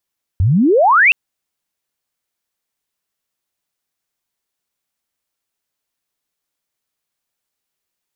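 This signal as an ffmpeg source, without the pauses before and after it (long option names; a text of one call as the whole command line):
ffmpeg -f lavfi -i "aevalsrc='pow(10,(-10+3.5*t/0.72)/20)*sin(2*PI*83*0.72/log(2800/83)*(exp(log(2800/83)*t/0.72)-1))':duration=0.72:sample_rate=44100" out.wav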